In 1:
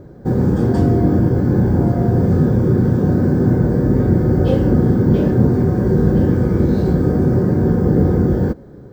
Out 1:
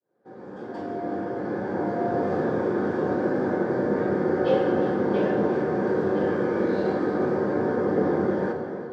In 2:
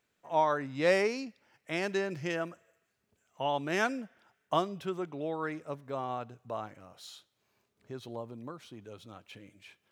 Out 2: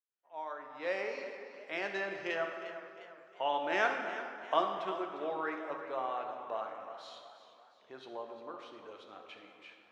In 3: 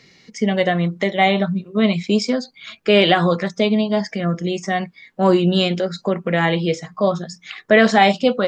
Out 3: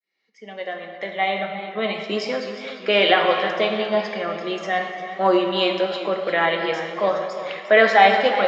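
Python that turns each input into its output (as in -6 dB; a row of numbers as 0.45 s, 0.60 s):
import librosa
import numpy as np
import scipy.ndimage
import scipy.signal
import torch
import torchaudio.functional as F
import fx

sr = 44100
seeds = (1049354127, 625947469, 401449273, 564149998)

y = fx.fade_in_head(x, sr, length_s=2.29)
y = fx.bandpass_edges(y, sr, low_hz=500.0, high_hz=3500.0)
y = fx.rev_plate(y, sr, seeds[0], rt60_s=2.2, hf_ratio=0.65, predelay_ms=0, drr_db=3.5)
y = fx.echo_warbled(y, sr, ms=353, feedback_pct=47, rate_hz=2.8, cents=80, wet_db=-13.5)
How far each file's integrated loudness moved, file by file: -9.5 LU, -4.0 LU, -2.0 LU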